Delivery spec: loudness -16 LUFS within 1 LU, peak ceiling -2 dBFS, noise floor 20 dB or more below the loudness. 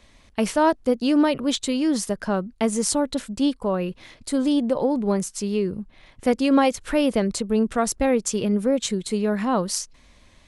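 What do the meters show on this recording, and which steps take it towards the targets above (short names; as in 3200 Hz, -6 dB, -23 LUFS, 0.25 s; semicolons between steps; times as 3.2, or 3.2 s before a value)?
loudness -23.0 LUFS; peak -5.5 dBFS; loudness target -16.0 LUFS
-> gain +7 dB; limiter -2 dBFS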